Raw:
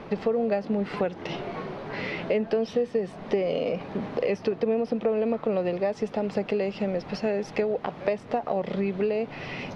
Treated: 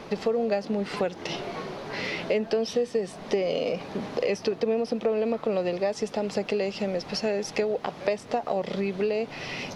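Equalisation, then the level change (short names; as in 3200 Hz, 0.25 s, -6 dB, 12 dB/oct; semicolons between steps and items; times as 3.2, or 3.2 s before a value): tone controls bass -3 dB, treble +14 dB; 0.0 dB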